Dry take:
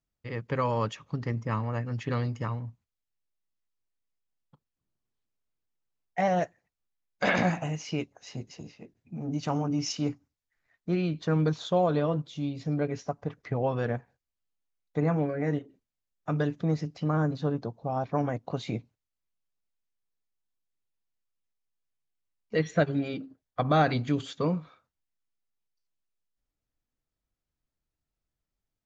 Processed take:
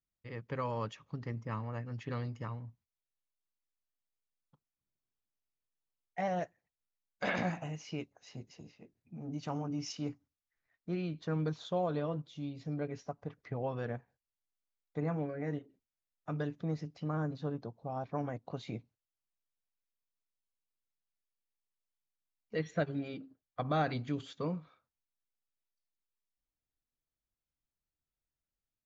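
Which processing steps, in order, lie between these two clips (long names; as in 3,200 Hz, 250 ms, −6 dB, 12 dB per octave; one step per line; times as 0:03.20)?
low-pass filter 7,300 Hz
level −8.5 dB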